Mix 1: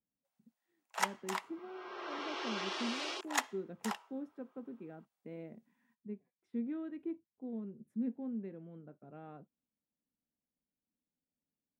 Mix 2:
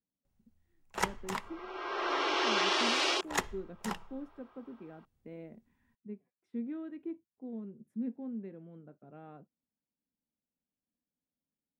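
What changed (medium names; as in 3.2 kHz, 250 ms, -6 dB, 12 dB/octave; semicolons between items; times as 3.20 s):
first sound: remove Chebyshev high-pass 650 Hz, order 3; second sound +10.5 dB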